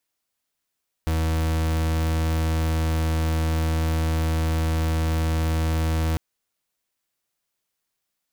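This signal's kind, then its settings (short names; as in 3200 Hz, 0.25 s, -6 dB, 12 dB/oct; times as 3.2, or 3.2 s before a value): pulse 80.3 Hz, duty 39% -22.5 dBFS 5.10 s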